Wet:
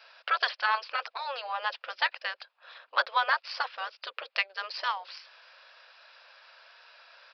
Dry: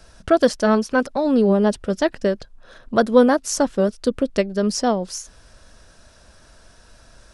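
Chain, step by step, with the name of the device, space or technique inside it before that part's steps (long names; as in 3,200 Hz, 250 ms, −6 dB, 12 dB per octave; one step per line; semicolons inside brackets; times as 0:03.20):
gate on every frequency bin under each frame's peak −10 dB weak
parametric band 520 Hz +10.5 dB 0.5 octaves
musical greeting card (downsampling to 11,025 Hz; high-pass filter 860 Hz 24 dB per octave; parametric band 2,500 Hz +7 dB 0.46 octaves)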